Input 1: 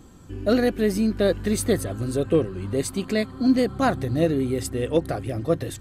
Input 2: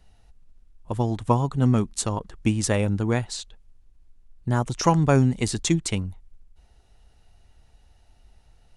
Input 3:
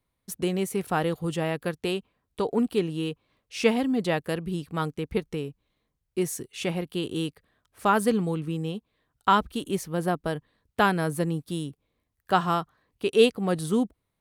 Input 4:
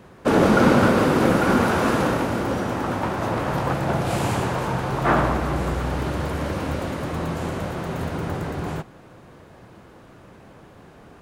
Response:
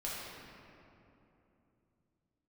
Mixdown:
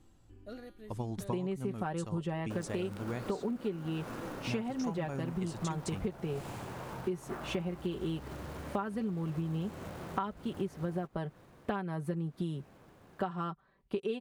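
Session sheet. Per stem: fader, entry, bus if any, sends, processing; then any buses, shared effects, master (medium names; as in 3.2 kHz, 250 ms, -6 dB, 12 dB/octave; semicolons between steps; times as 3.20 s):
-4.5 dB, 0.00 s, no send, feedback comb 110 Hz, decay 0.54 s, harmonics odd, mix 80%; auto duck -12 dB, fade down 0.70 s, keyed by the second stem
-11.5 dB, 0.00 s, no send, none
+0.5 dB, 0.90 s, no send, low-pass 1.5 kHz 6 dB/octave; comb 5.2 ms, depth 63%
-12.0 dB, 2.25 s, no send, integer overflow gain 4.5 dB; short-mantissa float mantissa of 2-bit; compression 6:1, threshold -27 dBFS, peak gain reduction 14.5 dB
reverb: none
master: compression 16:1, threshold -31 dBFS, peak gain reduction 19.5 dB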